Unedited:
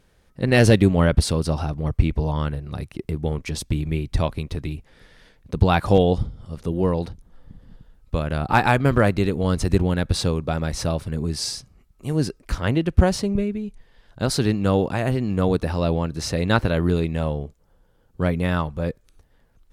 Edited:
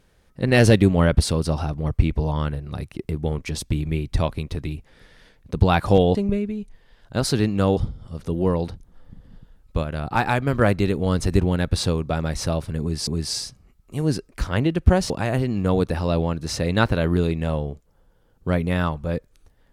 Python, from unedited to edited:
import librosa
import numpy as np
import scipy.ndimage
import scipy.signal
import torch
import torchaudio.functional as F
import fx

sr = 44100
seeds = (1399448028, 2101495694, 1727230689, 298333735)

y = fx.edit(x, sr, fx.clip_gain(start_s=8.21, length_s=0.78, db=-3.5),
    fx.repeat(start_s=11.18, length_s=0.27, count=2),
    fx.move(start_s=13.21, length_s=1.62, to_s=6.15), tone=tone)